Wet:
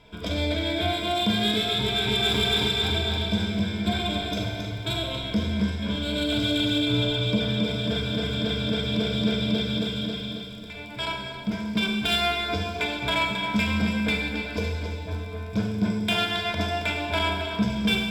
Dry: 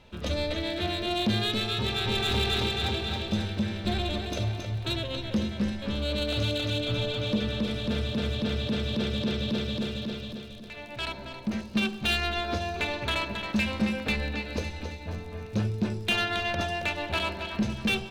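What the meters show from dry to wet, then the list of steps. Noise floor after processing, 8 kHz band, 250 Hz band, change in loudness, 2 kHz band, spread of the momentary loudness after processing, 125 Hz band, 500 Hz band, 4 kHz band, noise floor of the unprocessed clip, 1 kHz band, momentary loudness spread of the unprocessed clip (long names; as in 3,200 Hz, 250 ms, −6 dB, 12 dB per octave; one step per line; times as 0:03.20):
−37 dBFS, +3.0 dB, +4.0 dB, +4.0 dB, +3.0 dB, 8 LU, +2.0 dB, +2.5 dB, +5.0 dB, −41 dBFS, +4.0 dB, 8 LU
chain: EQ curve with evenly spaced ripples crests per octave 1.7, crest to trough 13 dB
four-comb reverb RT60 1.2 s, combs from 33 ms, DRR 2.5 dB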